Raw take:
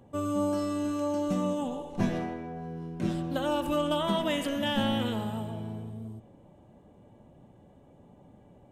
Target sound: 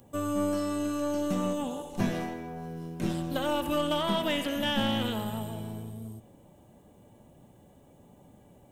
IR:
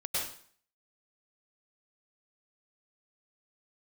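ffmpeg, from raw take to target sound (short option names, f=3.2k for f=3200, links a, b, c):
-filter_complex "[0:a]acrossover=split=3900[a][b];[b]acompressor=threshold=-58dB:ratio=4:attack=1:release=60[c];[a][c]amix=inputs=2:normalize=0,aemphasis=mode=production:type=75fm,aeval=exprs='0.178*(cos(1*acos(clip(val(0)/0.178,-1,1)))-cos(1*PI/2))+0.00708*(cos(8*acos(clip(val(0)/0.178,-1,1)))-cos(8*PI/2))':c=same"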